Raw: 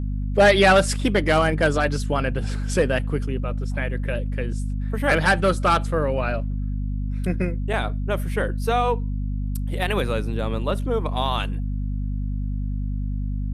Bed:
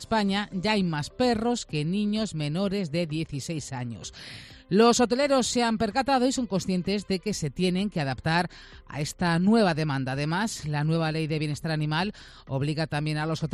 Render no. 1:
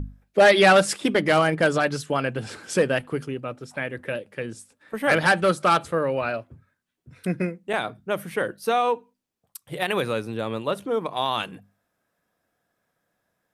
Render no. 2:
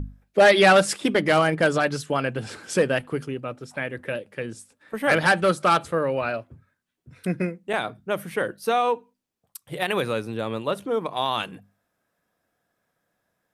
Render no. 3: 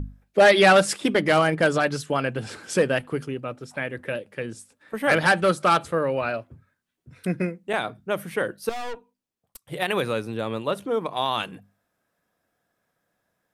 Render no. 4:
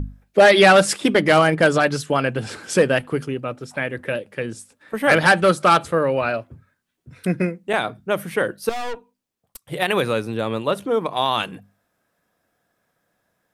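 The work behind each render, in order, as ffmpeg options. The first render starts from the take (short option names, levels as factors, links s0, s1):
-af "bandreject=f=50:t=h:w=6,bandreject=f=100:t=h:w=6,bandreject=f=150:t=h:w=6,bandreject=f=200:t=h:w=6,bandreject=f=250:t=h:w=6"
-af anull
-filter_complex "[0:a]asettb=1/sr,asplit=3[s0][s1][s2];[s0]atrim=end=8.694[s3];[s1]atrim=start=8.69:end=9.68,asetpts=PTS-STARTPTS,afade=t=in:d=0.004:c=qsin,afade=t=out:st=0.986:d=0.004:c=qsin,aeval=exprs='(tanh(35.5*val(0)+0.75)-tanh(0.75))/35.5':c=same[s4];[s2]atrim=start=9.676[s5];[s3][s4]acrossfade=d=0.004:c1=hsin:c2=qsin[s6];[s6][s5]acrossfade=d=0.004:c1=qsin:c2=hsin"
-af "volume=1.68,alimiter=limit=0.708:level=0:latency=1"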